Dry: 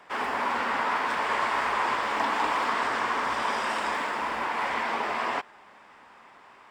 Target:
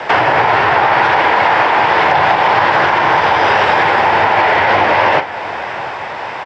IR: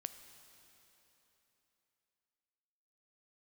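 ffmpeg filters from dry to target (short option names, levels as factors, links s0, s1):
-filter_complex "[0:a]acrossover=split=4900[s0][s1];[s1]acompressor=threshold=0.00126:ratio=4:attack=1:release=60[s2];[s0][s2]amix=inputs=2:normalize=0,highshelf=f=4500:g=-6,acompressor=threshold=0.0141:ratio=6,flanger=delay=9.2:depth=10:regen=-59:speed=1.5:shape=triangular,asetrate=45864,aresample=44100,afreqshift=-140,highpass=120,equalizer=f=180:t=q:w=4:g=-7,equalizer=f=270:t=q:w=4:g=-10,equalizer=f=1200:t=q:w=4:g=-5,lowpass=f=6300:w=0.5412,lowpass=f=6300:w=1.3066,asplit=2[s3][s4];[s4]aecho=0:1:41|692:0.211|0.141[s5];[s3][s5]amix=inputs=2:normalize=0,alimiter=level_in=59.6:limit=0.891:release=50:level=0:latency=1,volume=0.891"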